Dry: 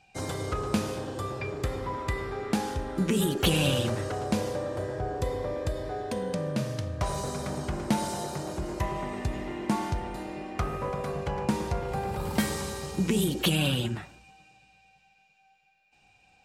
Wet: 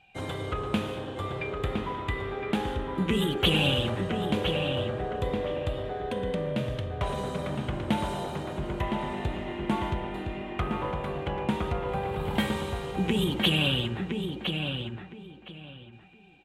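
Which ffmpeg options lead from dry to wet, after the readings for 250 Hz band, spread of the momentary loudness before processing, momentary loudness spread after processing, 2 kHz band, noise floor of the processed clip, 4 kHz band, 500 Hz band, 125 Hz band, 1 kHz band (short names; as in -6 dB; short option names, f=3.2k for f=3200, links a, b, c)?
+0.5 dB, 9 LU, 10 LU, +3.0 dB, -48 dBFS, +4.0 dB, +1.0 dB, 0.0 dB, +0.5 dB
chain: -filter_complex "[0:a]highshelf=f=4.1k:t=q:w=3:g=-7.5,asplit=2[a][b];[b]adelay=1013,lowpass=f=3.3k:p=1,volume=-5dB,asplit=2[c][d];[d]adelay=1013,lowpass=f=3.3k:p=1,volume=0.22,asplit=2[e][f];[f]adelay=1013,lowpass=f=3.3k:p=1,volume=0.22[g];[a][c][e][g]amix=inputs=4:normalize=0,volume=-1dB"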